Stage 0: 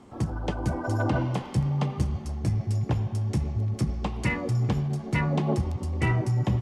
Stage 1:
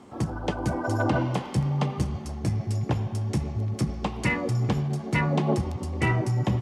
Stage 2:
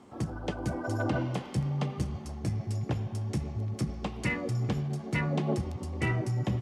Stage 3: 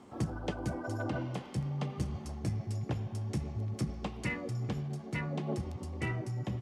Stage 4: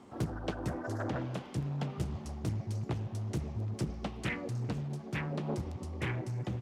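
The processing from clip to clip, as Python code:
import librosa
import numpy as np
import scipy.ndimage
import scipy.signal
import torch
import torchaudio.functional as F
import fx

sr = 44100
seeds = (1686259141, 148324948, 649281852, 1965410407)

y1 = fx.low_shelf(x, sr, hz=81.0, db=-11.0)
y1 = F.gain(torch.from_numpy(y1), 3.0).numpy()
y2 = fx.dynamic_eq(y1, sr, hz=940.0, q=2.8, threshold_db=-45.0, ratio=4.0, max_db=-5)
y2 = F.gain(torch.from_numpy(y2), -5.0).numpy()
y3 = fx.rider(y2, sr, range_db=10, speed_s=0.5)
y3 = F.gain(torch.from_numpy(y3), -4.5).numpy()
y4 = fx.doppler_dist(y3, sr, depth_ms=0.8)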